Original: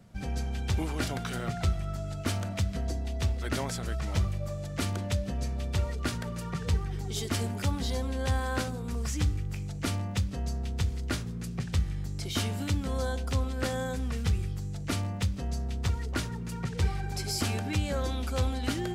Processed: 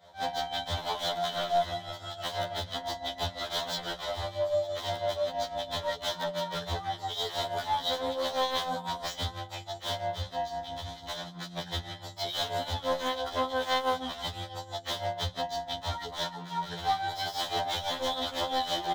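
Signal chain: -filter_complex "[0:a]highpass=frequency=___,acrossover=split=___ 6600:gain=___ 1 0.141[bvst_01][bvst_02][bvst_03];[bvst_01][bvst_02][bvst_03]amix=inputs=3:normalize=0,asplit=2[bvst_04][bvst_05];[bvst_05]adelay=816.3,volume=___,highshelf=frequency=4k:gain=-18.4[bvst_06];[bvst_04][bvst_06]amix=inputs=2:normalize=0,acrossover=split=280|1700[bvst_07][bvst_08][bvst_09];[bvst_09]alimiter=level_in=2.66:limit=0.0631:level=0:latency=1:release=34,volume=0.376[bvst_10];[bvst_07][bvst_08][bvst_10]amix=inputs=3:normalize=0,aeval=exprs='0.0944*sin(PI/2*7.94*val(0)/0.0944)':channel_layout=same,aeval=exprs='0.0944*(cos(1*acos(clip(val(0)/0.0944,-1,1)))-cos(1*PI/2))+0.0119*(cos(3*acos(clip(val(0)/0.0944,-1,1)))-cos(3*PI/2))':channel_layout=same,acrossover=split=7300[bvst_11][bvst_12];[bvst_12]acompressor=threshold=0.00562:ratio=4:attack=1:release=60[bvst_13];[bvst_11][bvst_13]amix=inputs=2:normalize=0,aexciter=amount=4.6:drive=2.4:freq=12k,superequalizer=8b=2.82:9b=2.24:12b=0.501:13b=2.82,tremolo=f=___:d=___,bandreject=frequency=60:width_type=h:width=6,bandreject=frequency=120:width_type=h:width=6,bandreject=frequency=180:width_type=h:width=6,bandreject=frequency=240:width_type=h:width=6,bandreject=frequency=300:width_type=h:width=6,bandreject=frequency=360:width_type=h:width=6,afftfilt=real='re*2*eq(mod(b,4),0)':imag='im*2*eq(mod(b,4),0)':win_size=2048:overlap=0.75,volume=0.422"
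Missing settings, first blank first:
69, 470, 0.158, 0.0631, 6, 0.75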